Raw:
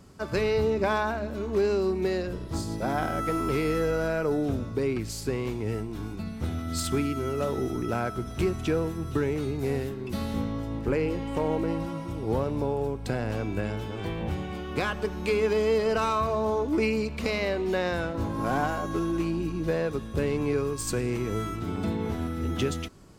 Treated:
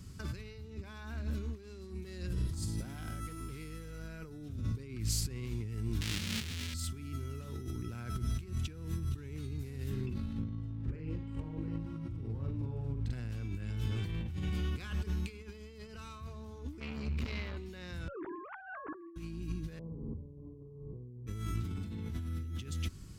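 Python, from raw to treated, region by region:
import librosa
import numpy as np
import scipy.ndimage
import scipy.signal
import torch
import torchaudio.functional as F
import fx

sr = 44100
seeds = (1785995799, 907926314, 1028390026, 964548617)

y = fx.chain(x, sr, fx.peak_eq(hz=9400.0, db=5.5, octaves=0.67),
    fx.overload_stage(gain_db=20.5), at=(1.63, 3.99))
y = fx.chain(y, sr, fx.halfwave_hold(),
    fx.weighting(curve='D'), at=(6.01, 6.74))
y = fx.chain(y, sr, fx.over_compress(threshold_db=-32.0, ratio=-0.5),
    fx.lowpass(hz=1200.0, slope=6),
    fx.doubler(ms=44.0, db=-4), at=(10.06, 13.13))
y = fx.chain(y, sr, fx.peak_eq(hz=9700.0, db=-13.0, octaves=1.6),
    fx.transformer_sat(knee_hz=1100.0), at=(16.8, 17.57))
y = fx.chain(y, sr, fx.sine_speech(),
    fx.lowpass(hz=1900.0, slope=24), at=(18.08, 19.16))
y = fx.chain(y, sr, fx.steep_lowpass(hz=1000.0, slope=72),
    fx.room_flutter(wall_m=8.4, rt60_s=1.4), at=(19.79, 21.27))
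y = fx.peak_eq(y, sr, hz=82.0, db=4.5, octaves=1.2)
y = fx.over_compress(y, sr, threshold_db=-34.0, ratio=-1.0)
y = fx.tone_stack(y, sr, knobs='6-0-2')
y = y * 10.0 ** (11.0 / 20.0)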